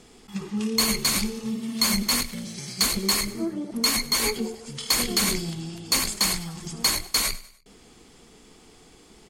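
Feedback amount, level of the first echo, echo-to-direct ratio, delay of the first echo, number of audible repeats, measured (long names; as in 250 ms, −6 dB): 43%, −18.5 dB, −17.5 dB, 99 ms, 3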